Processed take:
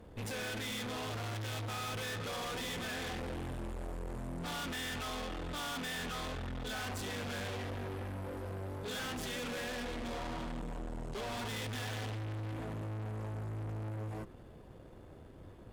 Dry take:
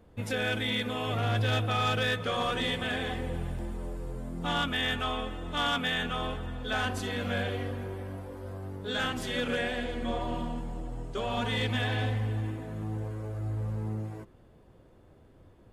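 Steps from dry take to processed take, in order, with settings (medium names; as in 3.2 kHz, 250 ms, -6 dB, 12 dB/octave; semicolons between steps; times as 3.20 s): valve stage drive 45 dB, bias 0.55; trim +6.5 dB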